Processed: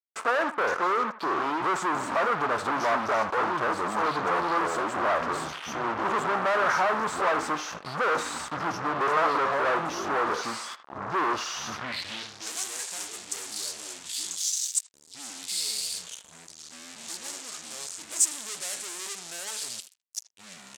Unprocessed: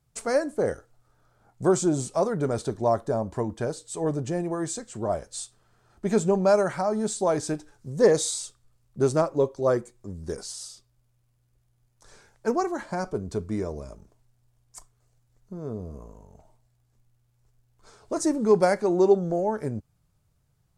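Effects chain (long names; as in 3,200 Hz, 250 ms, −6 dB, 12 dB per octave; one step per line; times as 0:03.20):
dynamic equaliser 8,000 Hz, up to +4 dB, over −50 dBFS, Q 6.9
delay with pitch and tempo change per echo 454 ms, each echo −5 semitones, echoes 3, each echo −6 dB
fuzz pedal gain 43 dB, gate −43 dBFS
band-pass filter sweep 1,200 Hz → 7,800 Hz, 0:11.72–0:12.52
far-end echo of a speakerphone 80 ms, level −13 dB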